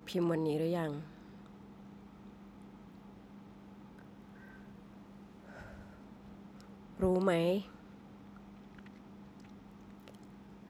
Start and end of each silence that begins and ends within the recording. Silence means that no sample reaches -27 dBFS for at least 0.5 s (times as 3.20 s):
0.86–7.02 s